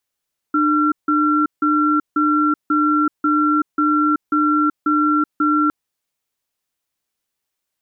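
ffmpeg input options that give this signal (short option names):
-f lavfi -i "aevalsrc='0.158*(sin(2*PI*301*t)+sin(2*PI*1360*t))*clip(min(mod(t,0.54),0.38-mod(t,0.54))/0.005,0,1)':d=5.16:s=44100"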